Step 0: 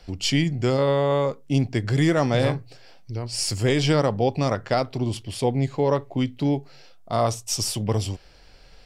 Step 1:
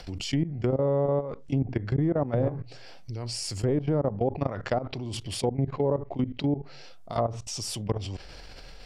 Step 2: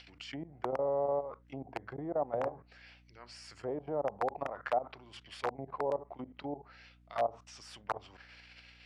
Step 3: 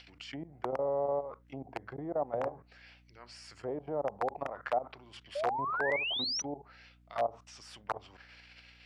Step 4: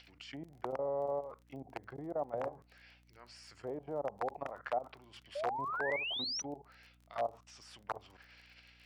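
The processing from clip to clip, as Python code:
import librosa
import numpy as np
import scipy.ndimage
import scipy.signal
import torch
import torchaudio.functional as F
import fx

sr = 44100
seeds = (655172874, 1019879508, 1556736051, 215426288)

y1 = fx.level_steps(x, sr, step_db=21)
y1 = fx.env_lowpass_down(y1, sr, base_hz=740.0, full_db=-20.0)
y1 = fx.env_flatten(y1, sr, amount_pct=50)
y1 = F.gain(torch.from_numpy(y1), -2.5).numpy()
y2 = (np.mod(10.0 ** (15.0 / 20.0) * y1 + 1.0, 2.0) - 1.0) / 10.0 ** (15.0 / 20.0)
y2 = fx.auto_wah(y2, sr, base_hz=770.0, top_hz=2900.0, q=2.3, full_db=-24.0, direction='down')
y2 = fx.add_hum(y2, sr, base_hz=60, snr_db=25)
y3 = fx.spec_paint(y2, sr, seeds[0], shape='rise', start_s=5.35, length_s=1.07, low_hz=550.0, high_hz=6100.0, level_db=-34.0)
y4 = fx.dmg_crackle(y3, sr, seeds[1], per_s=30.0, level_db=-47.0)
y4 = F.gain(torch.from_numpy(y4), -4.0).numpy()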